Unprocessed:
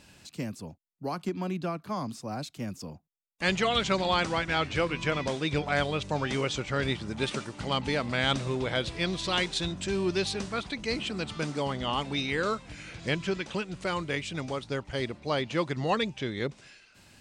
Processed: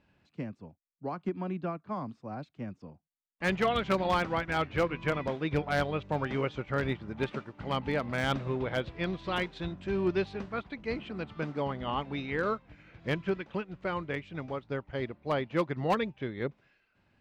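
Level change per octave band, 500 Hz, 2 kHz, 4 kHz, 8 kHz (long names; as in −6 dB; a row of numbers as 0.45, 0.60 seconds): −1.0 dB, −3.5 dB, −10.0 dB, below −10 dB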